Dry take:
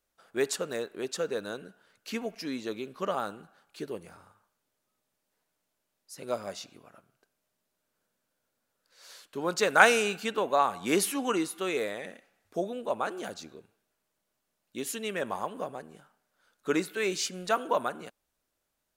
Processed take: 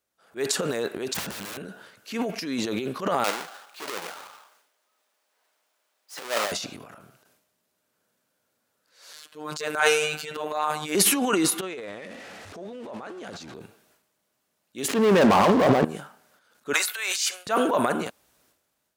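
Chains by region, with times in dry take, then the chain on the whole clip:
1.14–1.58 s: comb 1.2 ms, depth 46% + integer overflow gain 37.5 dB
3.24–6.52 s: square wave that keeps the level + high-pass 660 Hz + peaking EQ 14 kHz -3 dB 0.97 oct
9.13–10.95 s: bass shelf 260 Hz -11 dB + robot voice 152 Hz
11.61–13.54 s: jump at every zero crossing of -42.5 dBFS + compression 3:1, threshold -45 dBFS + distance through air 63 m
14.88–15.85 s: low-pass 1.4 kHz + waveshaping leveller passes 5
16.73–17.47 s: high-pass 750 Hz 24 dB/octave + treble shelf 6 kHz +6.5 dB + expander -46 dBFS
whole clip: transient shaper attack -7 dB, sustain +11 dB; high-pass 79 Hz; level rider gain up to 6 dB

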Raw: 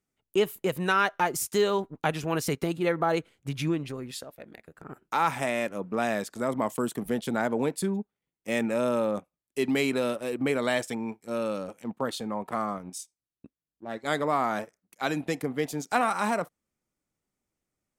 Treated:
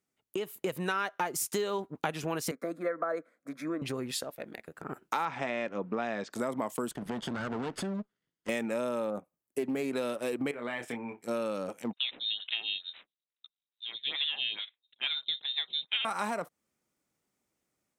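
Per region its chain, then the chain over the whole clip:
2.51–3.82 s: three-band isolator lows -19 dB, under 260 Hz, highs -15 dB, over 2.3 kHz + static phaser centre 580 Hz, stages 8
5.25–6.33 s: Bessel low-pass 3.9 kHz, order 8 + band-stop 620 Hz, Q 20
6.91–8.49 s: comb filter that takes the minimum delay 0.62 ms + distance through air 76 m + compression 3:1, threshold -34 dBFS
9.10–9.93 s: peaking EQ 3.8 kHz -11.5 dB 2.4 oct + loudspeaker Doppler distortion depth 0.12 ms
10.51–11.23 s: resonant high shelf 3.5 kHz -11.5 dB, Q 1.5 + compression 2.5:1, threshold -40 dBFS + doubling 25 ms -5 dB
11.93–16.05 s: median filter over 15 samples + frequency inversion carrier 3.9 kHz + lamp-driven phase shifter 2.3 Hz
whole clip: compression, threshold -33 dBFS; high-pass 180 Hz 6 dB/octave; level rider gain up to 4.5 dB

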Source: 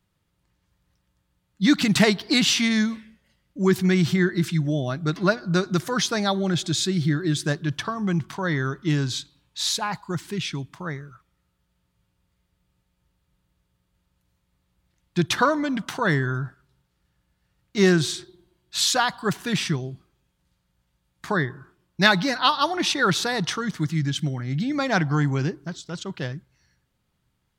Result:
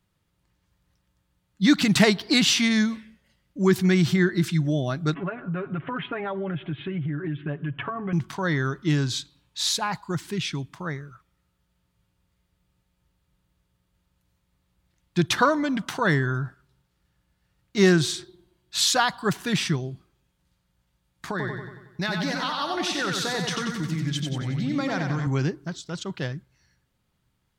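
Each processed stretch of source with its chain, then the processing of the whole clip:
5.14–8.13 s: steep low-pass 3 kHz 72 dB/octave + comb 7.2 ms, depth 78% + compression, threshold -26 dBFS
21.29–25.27 s: compression 5:1, threshold -25 dBFS + feedback delay 92 ms, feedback 53%, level -4.5 dB
whole clip: none

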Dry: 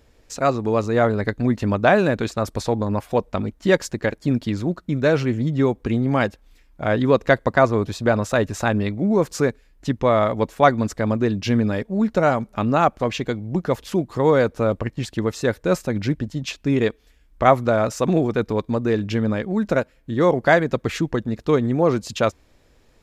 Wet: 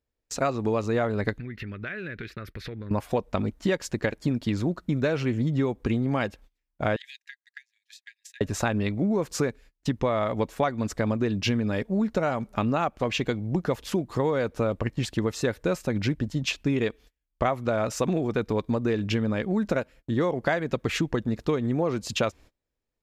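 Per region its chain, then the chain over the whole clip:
1.38–2.91 s: FFT filter 160 Hz 0 dB, 250 Hz -6 dB, 390 Hz -1 dB, 880 Hz -20 dB, 1.4 kHz +4 dB, 2 kHz +10 dB, 3.2 kHz +1 dB, 5 kHz -6 dB, 7.5 kHz -19 dB, 12 kHz -4 dB + compression, threshold -33 dBFS
6.96–8.41 s: brick-wall FIR high-pass 1.6 kHz + compression 20:1, threshold -40 dBFS + transient shaper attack +3 dB, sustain -2 dB
whole clip: gate -42 dBFS, range -29 dB; dynamic bell 2.7 kHz, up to +4 dB, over -40 dBFS, Q 2; compression 10:1, threshold -21 dBFS

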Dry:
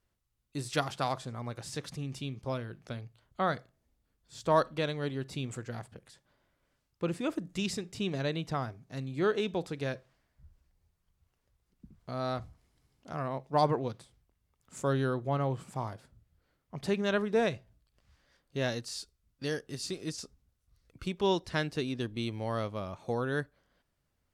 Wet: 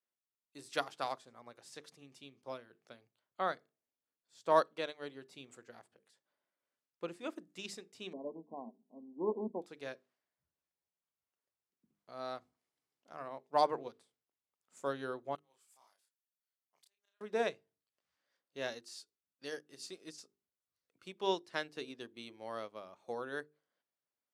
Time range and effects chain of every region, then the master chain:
8.13–9.62 s: self-modulated delay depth 0.25 ms + brick-wall FIR band-pass 160–1100 Hz + peaking EQ 230 Hz +15 dB 0.34 oct
15.35–17.21 s: differentiator + inverted gate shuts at -38 dBFS, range -26 dB + doubling 30 ms -3 dB
whole clip: high-pass 320 Hz 12 dB/octave; hum notches 50/100/150/200/250/300/350/400/450 Hz; upward expansion 1.5:1, over -48 dBFS; trim -1 dB

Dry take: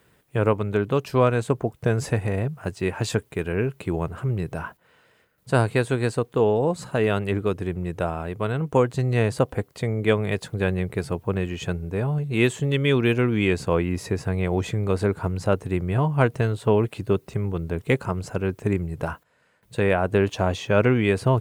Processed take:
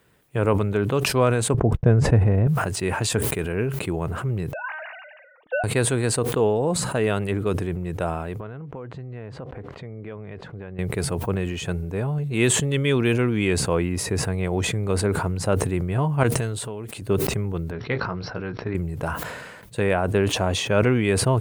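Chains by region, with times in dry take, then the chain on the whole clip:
1.54–2.47 s: gate -46 dBFS, range -45 dB + low-pass 2.6 kHz 6 dB/octave + tilt EQ -2.5 dB/octave
4.53–5.64 s: formants replaced by sine waves + feedback comb 310 Hz, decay 0.29 s, mix 50%
8.40–10.79 s: low-pass 2.1 kHz + compression, threshold -33 dBFS
16.23–17.02 s: peaking EQ 8 kHz +6.5 dB 2 oct + compression 3:1, threshold -33 dBFS
17.71–18.75 s: rippled Chebyshev low-pass 5.7 kHz, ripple 6 dB + doubling 17 ms -9 dB
whole clip: dynamic bell 9.3 kHz, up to +7 dB, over -60 dBFS, Q 2.6; decay stretcher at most 37 dB/s; trim -1 dB

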